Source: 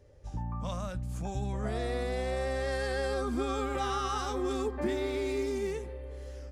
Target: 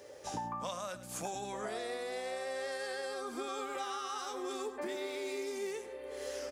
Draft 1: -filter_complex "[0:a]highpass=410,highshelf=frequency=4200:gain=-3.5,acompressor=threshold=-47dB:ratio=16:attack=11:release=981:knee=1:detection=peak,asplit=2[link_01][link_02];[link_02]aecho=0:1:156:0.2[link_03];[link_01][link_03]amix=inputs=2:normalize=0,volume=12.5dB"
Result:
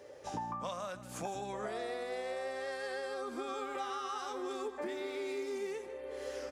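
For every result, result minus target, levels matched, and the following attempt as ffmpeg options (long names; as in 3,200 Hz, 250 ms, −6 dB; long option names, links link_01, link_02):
echo 52 ms late; 8,000 Hz band −5.5 dB
-filter_complex "[0:a]highpass=410,highshelf=frequency=4200:gain=-3.5,acompressor=threshold=-47dB:ratio=16:attack=11:release=981:knee=1:detection=peak,asplit=2[link_01][link_02];[link_02]aecho=0:1:104:0.2[link_03];[link_01][link_03]amix=inputs=2:normalize=0,volume=12.5dB"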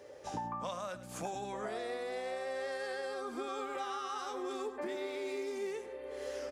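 8,000 Hz band −6.0 dB
-filter_complex "[0:a]highpass=410,highshelf=frequency=4200:gain=5.5,acompressor=threshold=-47dB:ratio=16:attack=11:release=981:knee=1:detection=peak,asplit=2[link_01][link_02];[link_02]aecho=0:1:104:0.2[link_03];[link_01][link_03]amix=inputs=2:normalize=0,volume=12.5dB"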